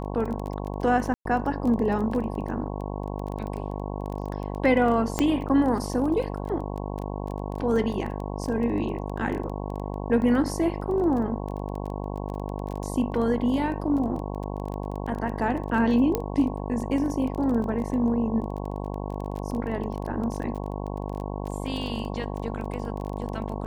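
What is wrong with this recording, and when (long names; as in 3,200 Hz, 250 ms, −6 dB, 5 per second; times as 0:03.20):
mains buzz 50 Hz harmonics 22 −32 dBFS
surface crackle 17 per second −31 dBFS
0:01.14–0:01.25: drop-out 113 ms
0:05.19: click −9 dBFS
0:16.15: click −11 dBFS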